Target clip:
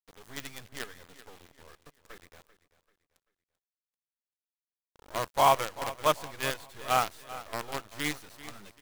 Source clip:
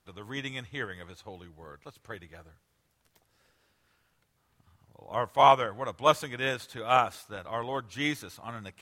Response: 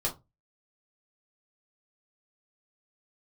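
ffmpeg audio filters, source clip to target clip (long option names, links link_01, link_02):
-filter_complex "[0:a]acrusher=bits=5:dc=4:mix=0:aa=0.000001,asplit=2[link_01][link_02];[link_02]aecho=0:1:389|778|1167:0.158|0.0571|0.0205[link_03];[link_01][link_03]amix=inputs=2:normalize=0,volume=-3dB"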